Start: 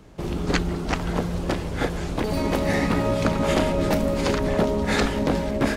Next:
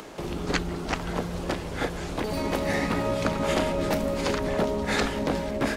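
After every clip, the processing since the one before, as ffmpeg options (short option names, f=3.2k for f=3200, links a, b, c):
-filter_complex "[0:a]lowshelf=f=300:g=-5,acrossover=split=240[a][b];[b]acompressor=mode=upward:threshold=-29dB:ratio=2.5[c];[a][c]amix=inputs=2:normalize=0,volume=-2dB"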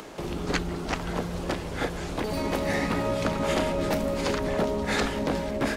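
-af "asoftclip=type=tanh:threshold=-13.5dB"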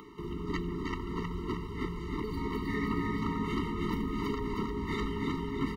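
-af "equalizer=f=8.4k:t=o:w=1.6:g=-13.5,aecho=1:1:315|630|945|1260|1575|1890|2205:0.631|0.322|0.164|0.0837|0.0427|0.0218|0.0111,afftfilt=real='re*eq(mod(floor(b*sr/1024/450),2),0)':imag='im*eq(mod(floor(b*sr/1024/450),2),0)':win_size=1024:overlap=0.75,volume=-5dB"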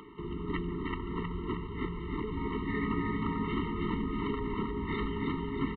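-af "aresample=8000,aresample=44100"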